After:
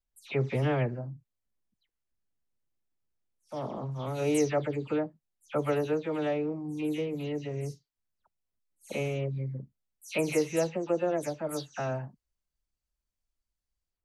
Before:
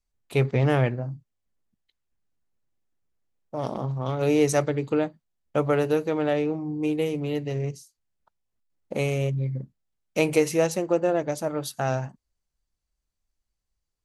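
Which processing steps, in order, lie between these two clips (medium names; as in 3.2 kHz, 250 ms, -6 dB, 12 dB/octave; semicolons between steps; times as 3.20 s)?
delay that grows with frequency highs early, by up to 144 ms; trim -5.5 dB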